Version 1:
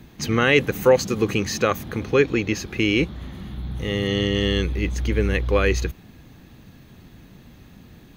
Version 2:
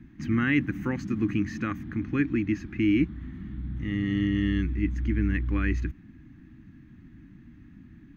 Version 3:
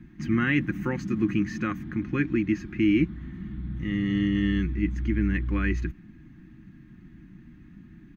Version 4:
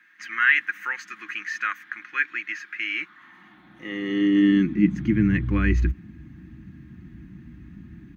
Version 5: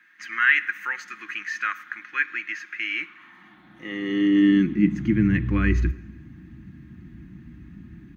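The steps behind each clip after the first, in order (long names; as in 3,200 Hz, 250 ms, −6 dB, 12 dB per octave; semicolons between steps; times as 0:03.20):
drawn EQ curve 170 Hz 0 dB, 310 Hz +6 dB, 450 Hz −24 dB, 1,800 Hz −1 dB, 4,000 Hz −19 dB, 5,800 Hz −17 dB, 11,000 Hz −25 dB; level −4 dB
comb filter 5.6 ms, depth 39%; level +1 dB
high-pass filter sweep 1,600 Hz → 65 Hz, 0:02.87–0:05.83; level +3.5 dB
dense smooth reverb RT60 1.1 s, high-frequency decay 0.9×, DRR 15.5 dB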